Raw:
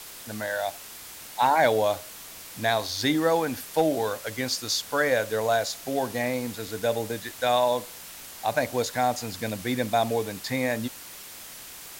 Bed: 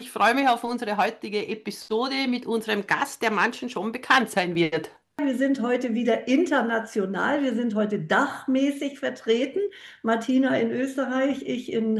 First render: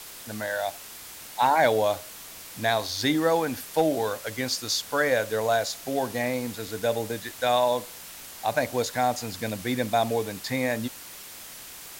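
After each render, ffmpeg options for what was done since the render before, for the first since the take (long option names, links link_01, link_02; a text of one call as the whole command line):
ffmpeg -i in.wav -af anull out.wav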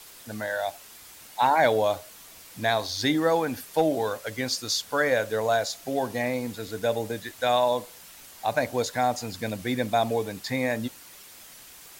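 ffmpeg -i in.wav -af "afftdn=noise_reduction=6:noise_floor=-43" out.wav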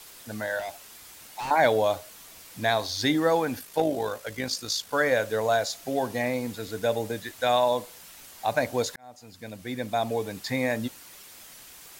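ffmpeg -i in.wav -filter_complex "[0:a]asettb=1/sr,asplit=3[link_01][link_02][link_03];[link_01]atrim=end=0.594[link_04];[link_02]atrim=start=0.59:end=1.51,asetpts=PTS-STARTPTS,afade=type=in:duration=0.004:curve=qsin,afade=type=out:start_time=0.916:duration=0.004:curve=qsin,volume=31dB,asoftclip=hard,volume=-31dB[link_05];[link_03]atrim=start=1.506[link_06];[link_04][link_05]acrossfade=duration=0.004:curve1=hsin:curve2=qsin[link_07];[link_07][link_06]acrossfade=duration=0.004:curve1=qsin:curve2=hsin,asettb=1/sr,asplit=3[link_08][link_09][link_10];[link_08]atrim=end=3.594[link_11];[link_09]atrim=start=3.59:end=4.93,asetpts=PTS-STARTPTS,afade=type=in:duration=0.004:curve=qsin,afade=type=out:start_time=1.336:duration=0.004:curve=qsin,tremolo=f=53:d=0.462[link_12];[link_10]atrim=start=4.926[link_13];[link_11][link_12]acrossfade=duration=0.004:curve1=hsin:curve2=qsin[link_14];[link_14][link_13]acrossfade=duration=0.004:curve1=qsin:curve2=hsin,asplit=2[link_15][link_16];[link_15]atrim=end=8.96,asetpts=PTS-STARTPTS,afade=type=out:start_time=8.956:duration=0.004:curve=hsin[link_17];[link_16]atrim=start=8.96,asetpts=PTS-STARTPTS,afade=type=in:duration=1.5[link_18];[link_17][link_18]concat=n=2:v=0:a=1" out.wav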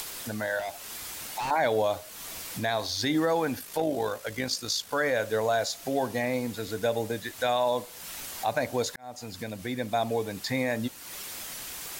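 ffmpeg -i in.wav -af "alimiter=limit=-16.5dB:level=0:latency=1:release=75,acompressor=mode=upward:threshold=-29dB:ratio=2.5" out.wav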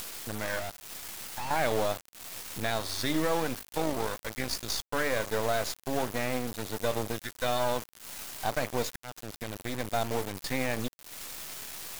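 ffmpeg -i in.wav -af "aeval=exprs='if(lt(val(0),0),0.251*val(0),val(0))':channel_layout=same,acrusher=bits=5:mix=0:aa=0.000001" out.wav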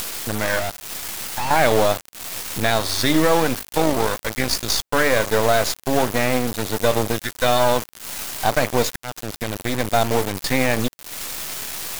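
ffmpeg -i in.wav -af "volume=11.5dB" out.wav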